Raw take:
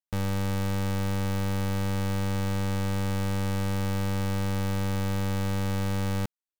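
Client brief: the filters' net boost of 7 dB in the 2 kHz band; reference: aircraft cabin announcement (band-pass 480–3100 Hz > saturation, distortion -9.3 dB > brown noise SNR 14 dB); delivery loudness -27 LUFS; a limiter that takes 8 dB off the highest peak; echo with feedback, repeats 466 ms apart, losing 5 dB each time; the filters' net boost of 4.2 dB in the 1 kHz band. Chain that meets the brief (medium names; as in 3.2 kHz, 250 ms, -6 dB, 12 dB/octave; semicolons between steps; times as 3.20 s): peaking EQ 1 kHz +3.5 dB; peaking EQ 2 kHz +8.5 dB; peak limiter -27 dBFS; band-pass 480–3100 Hz; feedback delay 466 ms, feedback 56%, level -5 dB; saturation -36.5 dBFS; brown noise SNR 14 dB; trim +17.5 dB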